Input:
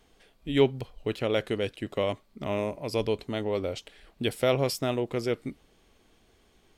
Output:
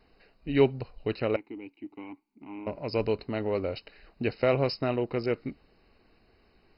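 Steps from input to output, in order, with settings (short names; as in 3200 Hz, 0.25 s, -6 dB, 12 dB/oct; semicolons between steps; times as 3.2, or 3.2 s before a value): 1.36–2.67 vowel filter u; MP2 32 kbps 48000 Hz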